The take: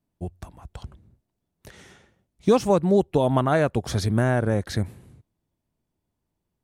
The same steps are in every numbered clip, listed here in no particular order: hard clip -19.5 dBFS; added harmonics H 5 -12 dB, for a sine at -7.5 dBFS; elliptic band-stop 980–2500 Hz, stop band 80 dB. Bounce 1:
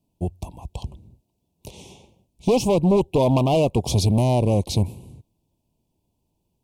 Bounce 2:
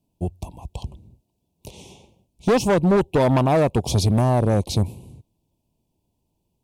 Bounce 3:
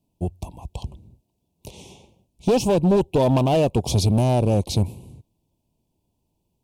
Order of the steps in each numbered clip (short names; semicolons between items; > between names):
hard clip > added harmonics > elliptic band-stop; elliptic band-stop > hard clip > added harmonics; hard clip > elliptic band-stop > added harmonics